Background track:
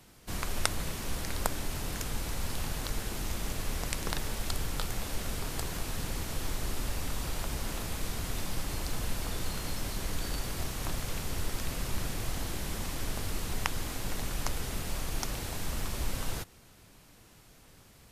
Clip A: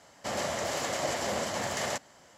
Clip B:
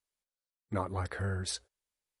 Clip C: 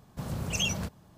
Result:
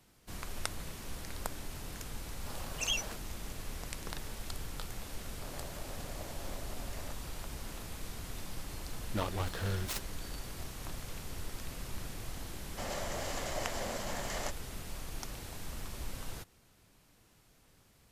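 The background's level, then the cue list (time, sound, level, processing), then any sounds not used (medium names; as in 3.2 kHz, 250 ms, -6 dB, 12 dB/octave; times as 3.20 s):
background track -8 dB
2.28 s: add C -3.5 dB + high-pass 540 Hz
5.16 s: add A -15.5 dB + local Wiener filter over 25 samples
8.42 s: add B -1.5 dB + delay time shaken by noise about 1.7 kHz, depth 0.083 ms
12.53 s: add A -7.5 dB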